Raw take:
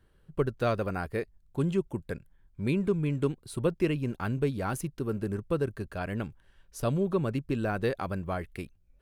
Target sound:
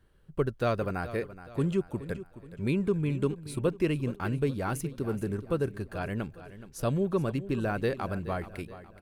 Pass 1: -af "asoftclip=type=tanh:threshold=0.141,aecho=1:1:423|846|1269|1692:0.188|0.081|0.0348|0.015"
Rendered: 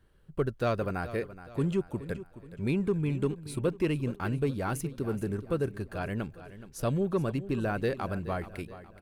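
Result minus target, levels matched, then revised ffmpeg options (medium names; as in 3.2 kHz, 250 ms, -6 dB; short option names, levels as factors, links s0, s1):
saturation: distortion +13 dB
-af "asoftclip=type=tanh:threshold=0.335,aecho=1:1:423|846|1269|1692:0.188|0.081|0.0348|0.015"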